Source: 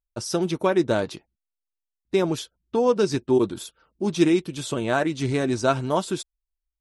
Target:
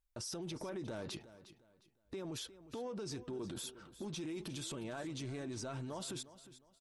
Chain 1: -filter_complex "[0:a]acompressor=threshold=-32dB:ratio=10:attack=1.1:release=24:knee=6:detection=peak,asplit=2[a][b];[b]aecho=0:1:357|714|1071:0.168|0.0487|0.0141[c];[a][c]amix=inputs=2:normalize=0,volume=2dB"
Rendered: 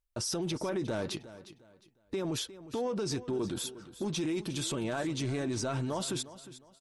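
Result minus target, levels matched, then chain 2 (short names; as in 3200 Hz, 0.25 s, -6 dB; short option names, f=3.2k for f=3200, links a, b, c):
compressor: peak gain reduction -10 dB
-filter_complex "[0:a]acompressor=threshold=-43dB:ratio=10:attack=1.1:release=24:knee=6:detection=peak,asplit=2[a][b];[b]aecho=0:1:357|714|1071:0.168|0.0487|0.0141[c];[a][c]amix=inputs=2:normalize=0,volume=2dB"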